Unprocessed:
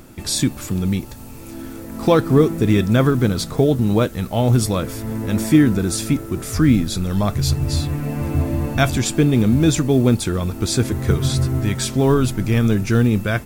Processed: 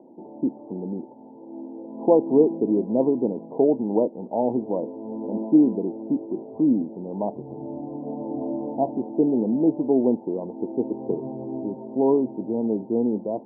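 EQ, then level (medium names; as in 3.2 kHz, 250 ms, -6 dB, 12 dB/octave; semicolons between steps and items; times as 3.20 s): high-pass 260 Hz 24 dB/octave; Chebyshev low-pass 960 Hz, order 8; distance through air 420 m; 0.0 dB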